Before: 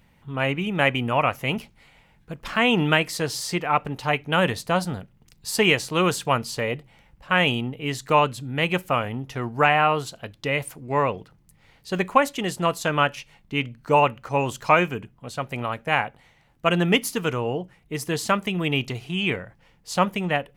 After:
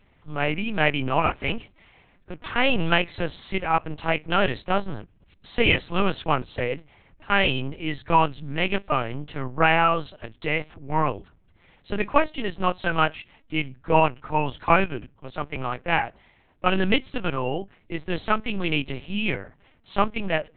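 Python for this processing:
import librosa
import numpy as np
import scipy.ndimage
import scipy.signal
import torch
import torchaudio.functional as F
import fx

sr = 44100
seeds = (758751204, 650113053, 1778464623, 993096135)

y = fx.pitch_keep_formants(x, sr, semitones=1.5)
y = fx.lpc_vocoder(y, sr, seeds[0], excitation='pitch_kept', order=8)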